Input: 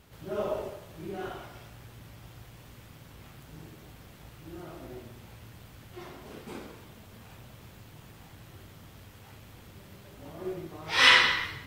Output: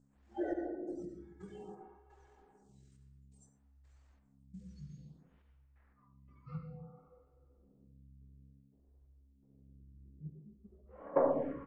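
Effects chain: spectral noise reduction 29 dB; notches 50/100/150/200/250 Hz; in parallel at -1 dB: compressor 5:1, threshold -31 dBFS, peak gain reduction 15 dB; on the sum: echo with dull and thin repeats by turns 0.124 s, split 1700 Hz, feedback 74%, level -8.5 dB; step gate "xxx..x..xx..xx" 86 bpm -24 dB; buzz 120 Hz, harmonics 4, -62 dBFS -8 dB/oct; pitch shift -10 st; low-pass sweep 7100 Hz -> 410 Hz, 4.56–7.27; on a send at -4 dB: reverb RT60 1.4 s, pre-delay 69 ms; on the sum: photocell phaser 0.58 Hz; gain +2.5 dB

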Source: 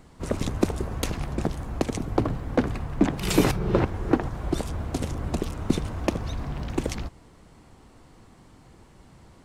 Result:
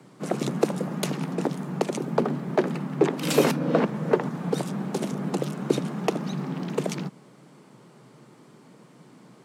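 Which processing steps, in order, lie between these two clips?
frequency shift +120 Hz

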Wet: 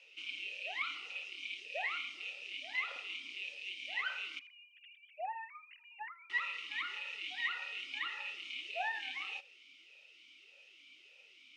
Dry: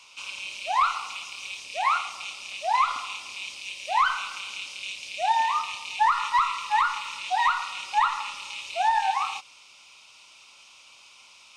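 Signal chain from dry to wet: 4.39–6.3 sine-wave speech; thinning echo 80 ms, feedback 25%, high-pass 1000 Hz, level -23 dB; vowel sweep e-i 1.7 Hz; gain +5 dB

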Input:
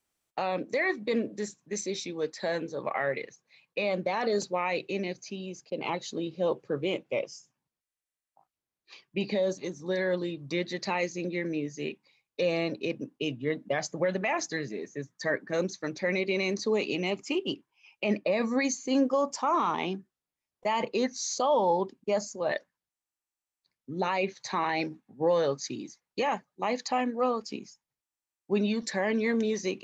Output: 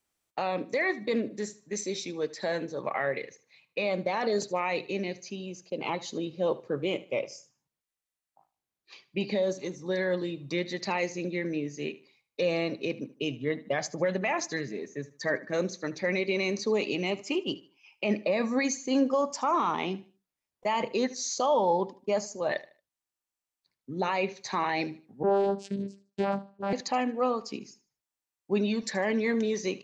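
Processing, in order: 25.23–26.73 vocoder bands 8, saw 198 Hz; feedback echo 76 ms, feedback 29%, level -18 dB

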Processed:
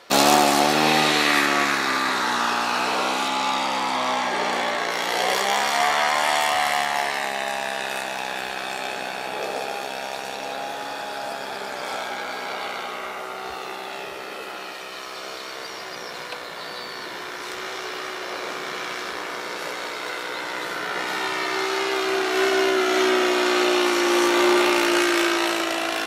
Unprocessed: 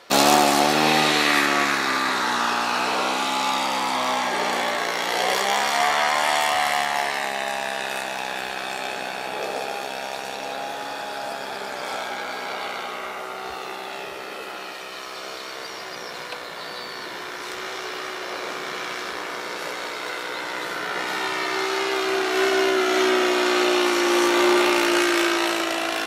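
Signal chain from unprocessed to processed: 3.28–4.91 high shelf 11000 Hz -11 dB

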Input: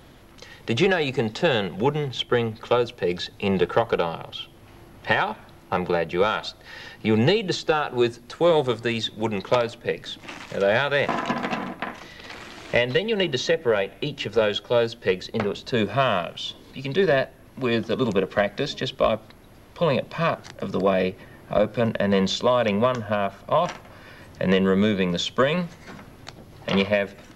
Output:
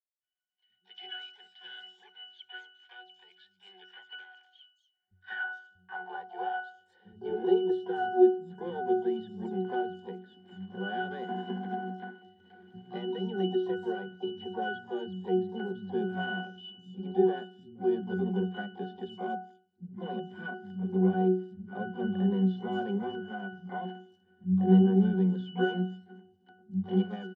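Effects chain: expander -35 dBFS; harmoniser +5 st -12 dB, +12 st -8 dB; high-pass sweep 2400 Hz -> 230 Hz, 4.55–7.9; hard clip -7 dBFS, distortion -31 dB; octave resonator F#, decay 0.45 s; three bands offset in time lows, mids, highs 0.2/0.45 s, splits 170/5000 Hz; gain +6 dB

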